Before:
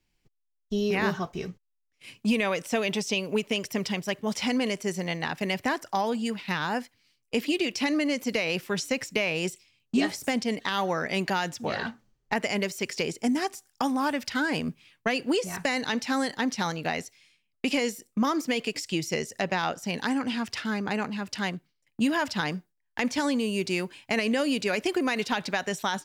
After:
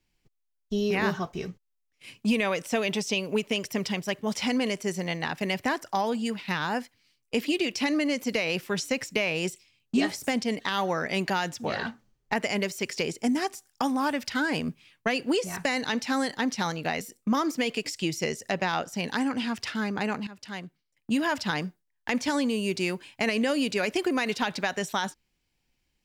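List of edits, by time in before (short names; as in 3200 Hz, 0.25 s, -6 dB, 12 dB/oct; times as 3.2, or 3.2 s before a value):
17.01–17.91 cut
21.17–22.22 fade in, from -13.5 dB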